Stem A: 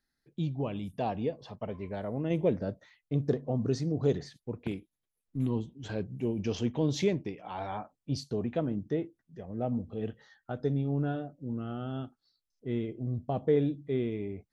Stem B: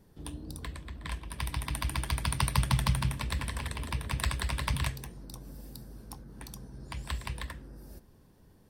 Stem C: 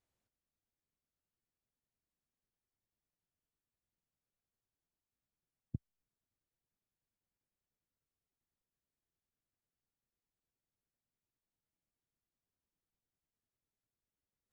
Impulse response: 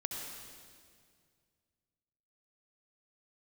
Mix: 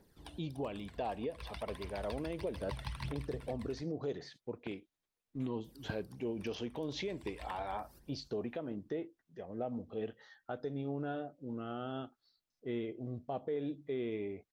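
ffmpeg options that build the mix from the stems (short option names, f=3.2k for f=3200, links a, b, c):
-filter_complex "[0:a]lowpass=5.3k,volume=0.5dB,asplit=2[a][b];[1:a]aphaser=in_gain=1:out_gain=1:delay=1.5:decay=0.61:speed=1.6:type=triangular,volume=-5dB,asplit=3[c][d][e];[c]atrim=end=3.53,asetpts=PTS-STARTPTS,afade=t=out:st=3.526:d=0.004:c=hsin[f];[d]atrim=start=3.53:end=5.64,asetpts=PTS-STARTPTS,volume=0[g];[e]atrim=start=5.64,asetpts=PTS-STARTPTS,afade=t=in:d=0.004:c=hsin[h];[f][g][h]concat=n=3:v=0:a=1,asplit=2[i][j];[j]volume=-18dB[k];[2:a]adelay=150,volume=-1.5dB[l];[b]apad=whole_len=383436[m];[i][m]sidechaincompress=threshold=-36dB:ratio=8:attack=8:release=523[n];[a][n]amix=inputs=2:normalize=0,bass=f=250:g=-12,treble=f=4k:g=1,alimiter=level_in=5dB:limit=-24dB:level=0:latency=1:release=186,volume=-5dB,volume=0dB[o];[k]aecho=0:1:291:1[p];[l][o][p]amix=inputs=3:normalize=0,acrossover=split=5300[q][r];[r]acompressor=threshold=-60dB:ratio=4:attack=1:release=60[s];[q][s]amix=inputs=2:normalize=0"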